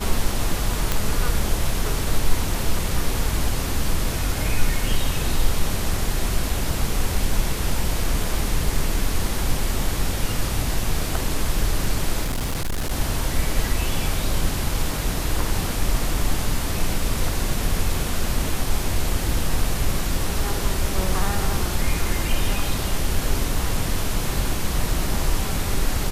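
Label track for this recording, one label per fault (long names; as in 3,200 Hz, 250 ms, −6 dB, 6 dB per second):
0.920000	0.920000	click
12.250000	12.920000	clipping −20.5 dBFS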